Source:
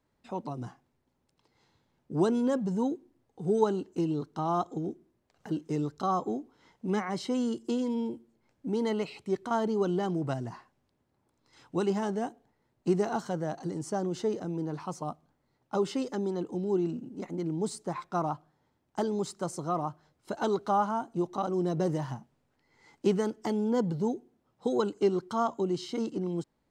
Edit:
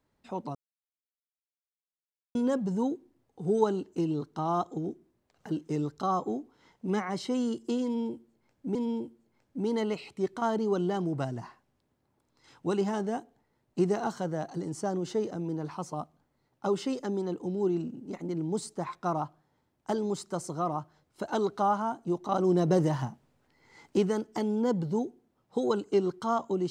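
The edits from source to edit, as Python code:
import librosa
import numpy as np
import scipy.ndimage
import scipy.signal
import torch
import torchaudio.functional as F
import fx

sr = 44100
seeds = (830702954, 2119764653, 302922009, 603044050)

y = fx.edit(x, sr, fx.silence(start_s=0.55, length_s=1.8),
    fx.repeat(start_s=7.84, length_s=0.91, count=2),
    fx.clip_gain(start_s=21.41, length_s=1.65, db=4.5), tone=tone)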